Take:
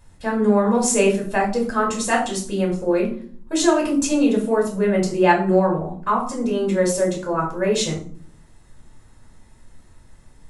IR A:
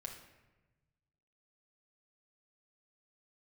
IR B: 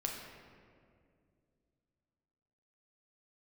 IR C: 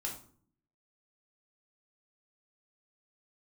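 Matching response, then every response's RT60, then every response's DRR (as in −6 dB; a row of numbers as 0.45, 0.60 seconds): C; 1.1, 2.3, 0.50 seconds; 0.5, −0.5, −1.5 decibels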